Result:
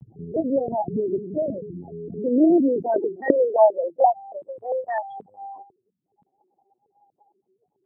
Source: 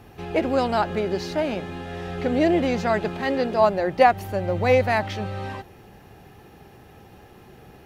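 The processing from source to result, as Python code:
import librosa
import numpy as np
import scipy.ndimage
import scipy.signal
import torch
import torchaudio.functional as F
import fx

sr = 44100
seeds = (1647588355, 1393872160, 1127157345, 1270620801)

y = fx.spec_topn(x, sr, count=4)
y = fx.lpc_vocoder(y, sr, seeds[0], excitation='pitch_kept', order=8)
y = fx.dynamic_eq(y, sr, hz=760.0, q=6.9, threshold_db=-38.0, ratio=4.0, max_db=-6)
y = fx.filter_sweep_highpass(y, sr, from_hz=140.0, to_hz=950.0, start_s=1.74, end_s=4.42, q=1.7)
y = fx.low_shelf(y, sr, hz=310.0, db=-7.5, at=(3.66, 4.58))
y = y * librosa.db_to_amplitude(1.0)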